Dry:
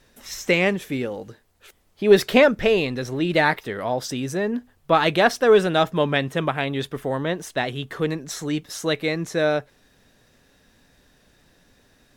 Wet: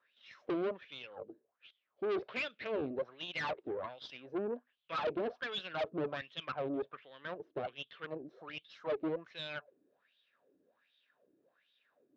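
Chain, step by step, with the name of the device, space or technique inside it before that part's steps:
wah-wah guitar rig (LFO wah 1.3 Hz 310–3,500 Hz, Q 6; tube saturation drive 34 dB, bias 0.7; loudspeaker in its box 110–4,200 Hz, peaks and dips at 560 Hz +4 dB, 840 Hz −6 dB, 1,900 Hz −5 dB)
level +2.5 dB

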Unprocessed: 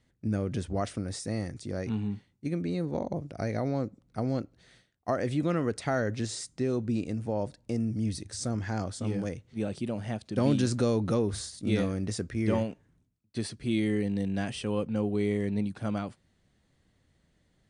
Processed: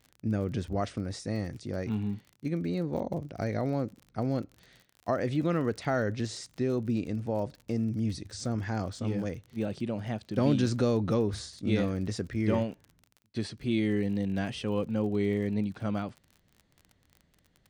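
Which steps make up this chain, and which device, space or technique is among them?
lo-fi chain (low-pass filter 6,000 Hz 12 dB per octave; tape wow and flutter 29 cents; surface crackle 39 per second −41 dBFS)

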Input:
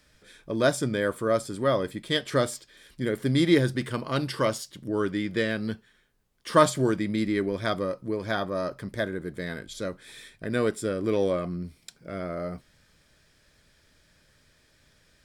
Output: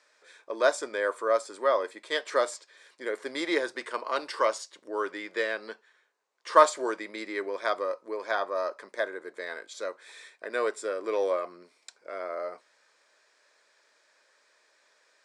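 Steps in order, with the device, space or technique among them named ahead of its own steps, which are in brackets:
phone speaker on a table (loudspeaker in its box 440–8,000 Hz, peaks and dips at 1,000 Hz +6 dB, 3,200 Hz −7 dB, 5,100 Hz −3 dB)
0:05.54–0:06.62: low-pass filter 9,200 Hz 12 dB per octave

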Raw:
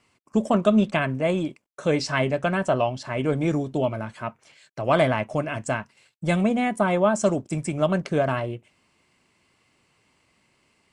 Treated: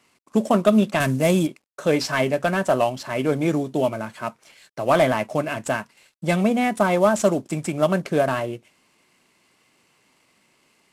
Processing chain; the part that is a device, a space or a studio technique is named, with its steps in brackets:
early wireless headset (high-pass filter 160 Hz 12 dB per octave; variable-slope delta modulation 64 kbit/s)
0:01.00–0:01.47: bass and treble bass +8 dB, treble +11 dB
level +3 dB

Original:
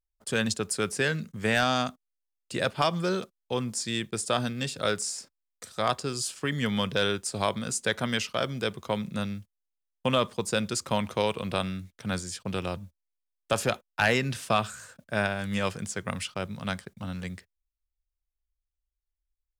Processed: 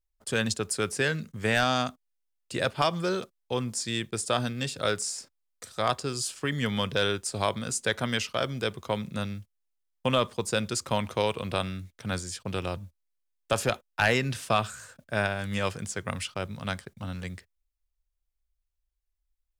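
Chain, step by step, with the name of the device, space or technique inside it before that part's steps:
low shelf boost with a cut just above (low-shelf EQ 78 Hz +5.5 dB; parametric band 190 Hz −4 dB 0.52 octaves)

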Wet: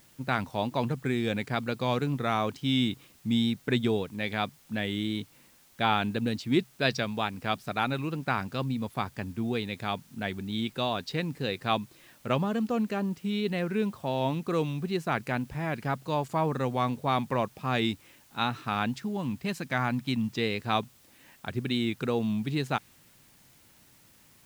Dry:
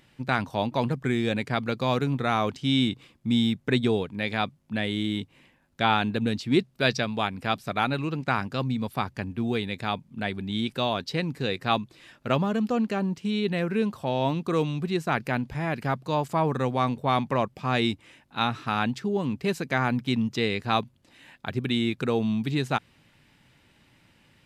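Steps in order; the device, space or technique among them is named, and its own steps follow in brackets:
plain cassette with noise reduction switched in (one half of a high-frequency compander decoder only; tape wow and flutter; white noise bed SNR 30 dB)
0:18.97–0:20.33: parametric band 430 Hz −9 dB 0.4 octaves
level −3 dB

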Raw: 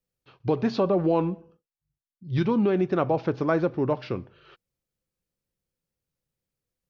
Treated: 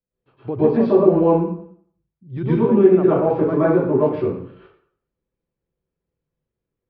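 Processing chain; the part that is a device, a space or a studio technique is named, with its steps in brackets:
phone in a pocket (low-pass filter 3,100 Hz 12 dB per octave; parametric band 310 Hz +4 dB 2 octaves; high-shelf EQ 2,400 Hz −10 dB)
dense smooth reverb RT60 0.59 s, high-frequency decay 0.85×, pre-delay 100 ms, DRR −10 dB
level −5.5 dB

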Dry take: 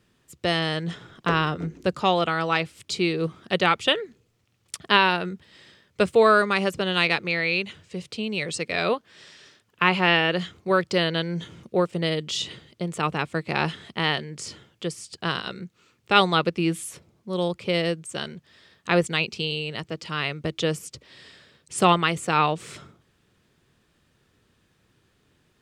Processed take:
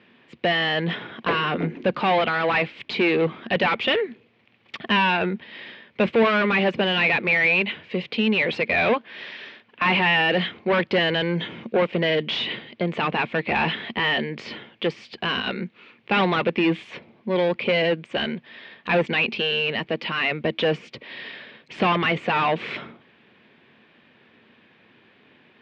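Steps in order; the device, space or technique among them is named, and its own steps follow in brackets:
overdrive pedal into a guitar cabinet (mid-hump overdrive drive 30 dB, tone 3,200 Hz, clips at −2.5 dBFS; loudspeaker in its box 85–3,400 Hz, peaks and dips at 230 Hz +9 dB, 1,300 Hz −7 dB, 2,300 Hz +4 dB)
level −8.5 dB

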